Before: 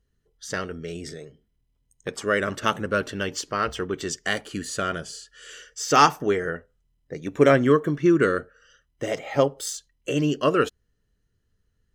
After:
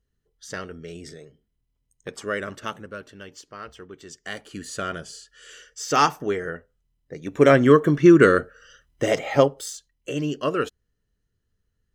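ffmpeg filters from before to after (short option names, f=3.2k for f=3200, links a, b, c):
-af "volume=15.5dB,afade=t=out:st=2.24:d=0.74:silence=0.334965,afade=t=in:st=4.07:d=0.74:silence=0.281838,afade=t=in:st=7.17:d=0.82:silence=0.375837,afade=t=out:st=9.22:d=0.46:silence=0.334965"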